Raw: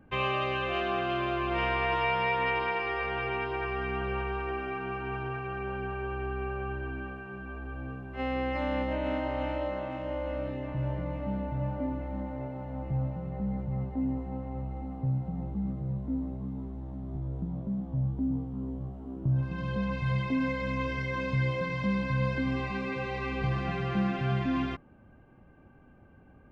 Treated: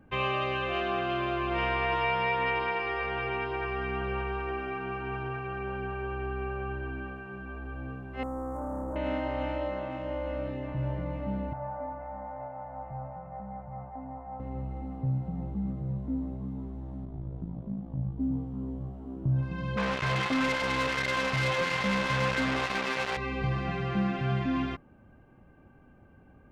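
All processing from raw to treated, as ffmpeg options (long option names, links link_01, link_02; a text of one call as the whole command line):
ffmpeg -i in.wav -filter_complex "[0:a]asettb=1/sr,asplit=3[link_01][link_02][link_03];[link_01]atrim=end=8.234[link_04];[link_02]atrim=start=8.23:end=8.96,asetpts=PTS-STARTPTS,afade=type=in:duration=0.004:curve=qsin,afade=type=out:start_time=0.726:duration=0.004:curve=qsin,equalizer=frequency=640:width_type=o:width=0.27:gain=-3.5,volume=31.5dB,asoftclip=hard,volume=-31.5dB,asuperstop=centerf=3200:order=8:qfactor=0.5[link_05];[link_03]atrim=start=8.956[link_06];[link_04][link_05]acrossfade=duration=0.004:curve1=hsin:curve2=qsin[link_07];[link_07][link_06]acrossfade=duration=0.004:curve1=qsin:curve2=hsin,asettb=1/sr,asplit=3[link_08][link_09][link_10];[link_08]atrim=end=11.534[link_11];[link_09]atrim=start=11.53:end=14.4,asetpts=PTS-STARTPTS,afade=type=in:duration=0.004:curve=qsin,afade=type=out:start_time=2.866:duration=0.004:curve=qsin,lowpass=frequency=1800:width=0.5412,lowpass=frequency=1800:width=1.3066,lowshelf=frequency=520:width_type=q:width=3:gain=-10.5[link_12];[link_10]atrim=start=14.396[link_13];[link_11][link_12]acrossfade=duration=0.004:curve1=hsin:curve2=qsin[link_14];[link_14][link_13]acrossfade=duration=0.004:curve1=qsin:curve2=hsin,asettb=1/sr,asplit=3[link_15][link_16][link_17];[link_15]atrim=end=17.054[link_18];[link_16]atrim=start=17.05:end=18.2,asetpts=PTS-STARTPTS,afade=type=in:duration=0.004:curve=qsin,afade=type=out:start_time=1.146:duration=0.004:curve=qsin,lowpass=4400,tremolo=f=54:d=0.71[link_19];[link_17]atrim=start=18.196[link_20];[link_18][link_19]acrossfade=duration=0.004:curve1=hsin:curve2=qsin[link_21];[link_21][link_20]acrossfade=duration=0.004:curve1=qsin:curve2=hsin,asettb=1/sr,asplit=3[link_22][link_23][link_24];[link_22]atrim=end=19.774[link_25];[link_23]atrim=start=19.77:end=23.17,asetpts=PTS-STARTPTS,afade=type=in:duration=0.004:curve=qsin,afade=type=out:start_time=3.396:duration=0.004:curve=qsin,acrusher=bits=4:mix=0:aa=0.5,asplit=2[link_26][link_27];[link_27]highpass=frequency=720:poles=1,volume=13dB,asoftclip=type=tanh:threshold=-17.5dB[link_28];[link_26][link_28]amix=inputs=2:normalize=0,lowpass=frequency=3700:poles=1,volume=-6dB[link_29];[link_24]atrim=start=23.166[link_30];[link_25][link_29]acrossfade=duration=0.004:curve1=hsin:curve2=qsin[link_31];[link_31][link_30]acrossfade=duration=0.004:curve1=qsin:curve2=hsin" out.wav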